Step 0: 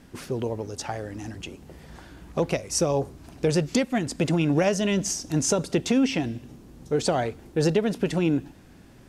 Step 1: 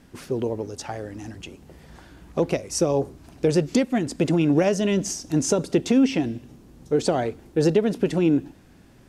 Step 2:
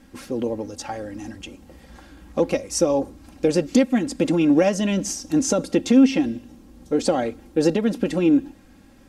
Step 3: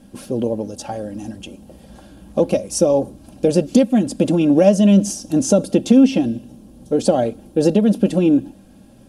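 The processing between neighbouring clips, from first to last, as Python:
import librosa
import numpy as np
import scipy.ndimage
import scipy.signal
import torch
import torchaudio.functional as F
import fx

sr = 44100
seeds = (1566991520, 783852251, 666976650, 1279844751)

y1 = fx.dynamic_eq(x, sr, hz=330.0, q=0.89, threshold_db=-36.0, ratio=4.0, max_db=6)
y1 = y1 * librosa.db_to_amplitude(-1.5)
y2 = y1 + 0.65 * np.pad(y1, (int(3.7 * sr / 1000.0), 0))[:len(y1)]
y3 = fx.graphic_eq_31(y2, sr, hz=(125, 200, 400, 630, 1250, 2000, 3150, 10000), db=(12, 11, 5, 10, -4, -10, 3, 10))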